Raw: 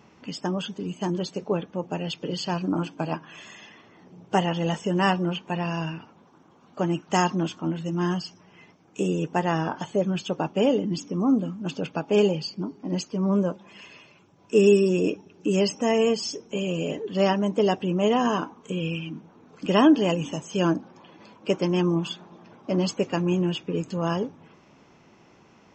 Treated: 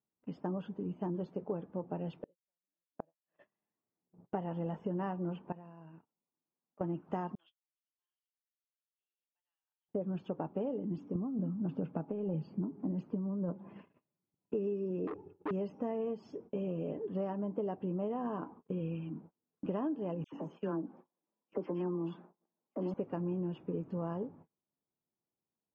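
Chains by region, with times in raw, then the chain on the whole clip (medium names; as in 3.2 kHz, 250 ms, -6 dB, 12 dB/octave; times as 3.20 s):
2.21–3.47 s: bass shelf 190 Hz -8.5 dB + small resonant body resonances 570/1800 Hz, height 13 dB, ringing for 30 ms + inverted gate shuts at -22 dBFS, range -37 dB
5.52–6.81 s: high-pass 130 Hz 6 dB/octave + compression, threshold -41 dBFS
7.35–9.89 s: ladder band-pass 3.5 kHz, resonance 75% + waveshaping leveller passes 1
11.15–14.54 s: high-pass 150 Hz + tone controls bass +10 dB, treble -7 dB + compressor with a negative ratio -23 dBFS
15.07–15.51 s: tilt EQ -1.5 dB/octave + comb 2.3 ms, depth 94% + transformer saturation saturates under 2.3 kHz
20.24–22.94 s: high-pass 210 Hz + phase dispersion lows, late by 84 ms, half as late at 1.5 kHz + dynamic bell 620 Hz, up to -5 dB, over -41 dBFS, Q 2.5
whole clip: low-pass 1 kHz 12 dB/octave; gate -45 dBFS, range -34 dB; compression 10:1, threshold -26 dBFS; trim -6 dB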